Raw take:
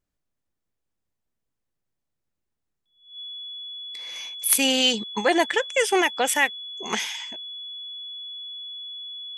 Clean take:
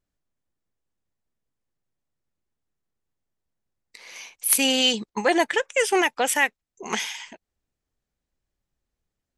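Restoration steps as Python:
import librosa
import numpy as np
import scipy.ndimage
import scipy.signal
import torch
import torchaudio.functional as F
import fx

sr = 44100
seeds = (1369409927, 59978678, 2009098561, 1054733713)

y = fx.notch(x, sr, hz=3400.0, q=30.0)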